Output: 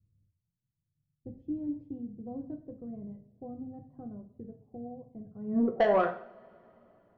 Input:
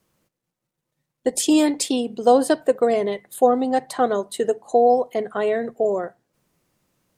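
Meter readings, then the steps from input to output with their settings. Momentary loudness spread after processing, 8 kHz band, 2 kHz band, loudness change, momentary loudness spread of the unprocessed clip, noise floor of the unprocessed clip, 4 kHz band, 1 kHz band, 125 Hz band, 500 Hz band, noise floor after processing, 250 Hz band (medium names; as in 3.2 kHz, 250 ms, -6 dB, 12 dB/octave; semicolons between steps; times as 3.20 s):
21 LU, under -40 dB, -10.0 dB, -12.5 dB, 8 LU, -82 dBFS, under -20 dB, -15.0 dB, no reading, -14.5 dB, -85 dBFS, -11.5 dB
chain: level-controlled noise filter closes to 780 Hz; dynamic bell 440 Hz, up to -7 dB, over -29 dBFS, Q 2.1; low-pass sweep 100 Hz -> 1.3 kHz, 5.38–5.93 s; saturation -19 dBFS, distortion -10 dB; two-slope reverb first 0.47 s, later 3.5 s, from -28 dB, DRR 3.5 dB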